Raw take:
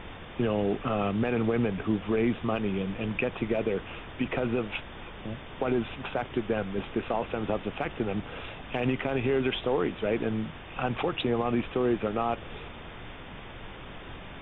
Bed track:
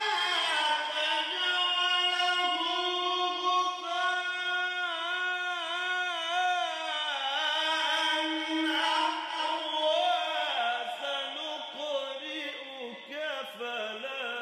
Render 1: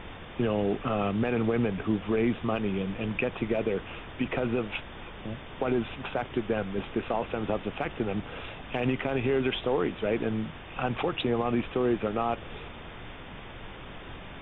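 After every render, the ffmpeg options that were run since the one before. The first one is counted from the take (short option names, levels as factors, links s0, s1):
-af anull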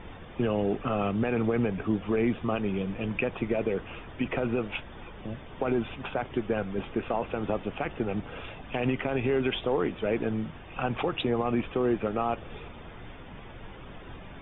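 -af "afftdn=nr=8:nf=-44"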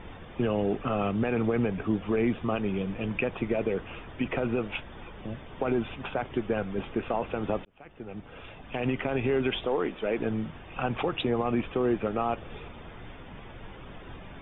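-filter_complex "[0:a]asettb=1/sr,asplit=3[s0][s1][s2];[s0]atrim=end=9.664[s3];[s1]atrim=start=9.66:end=10.19,asetpts=PTS-STARTPTS,afade=t=in:d=0.004:c=qsin,afade=t=out:st=0.526:d=0.004:c=qsin,equalizer=f=93:w=1.1:g=-15[s4];[s2]atrim=start=10.186[s5];[s3][s4]acrossfade=d=0.004:c1=hsin:c2=qsin[s6];[s6][s5]acrossfade=d=0.004:c1=qsin:c2=hsin,asplit=2[s7][s8];[s7]atrim=end=7.65,asetpts=PTS-STARTPTS,afade=t=out:st=7.646:d=0.004:c=hsin[s9];[s8]atrim=start=7.65,asetpts=PTS-STARTPTS,afade=t=in:d=1.39[s10];[s9][s10]concat=n=2:v=0:a=1"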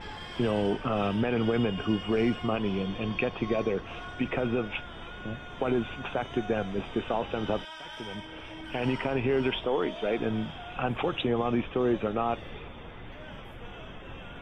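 -filter_complex "[1:a]volume=0.188[s0];[0:a][s0]amix=inputs=2:normalize=0"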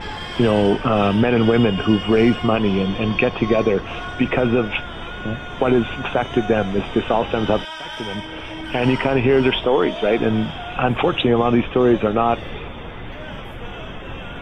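-af "volume=3.55"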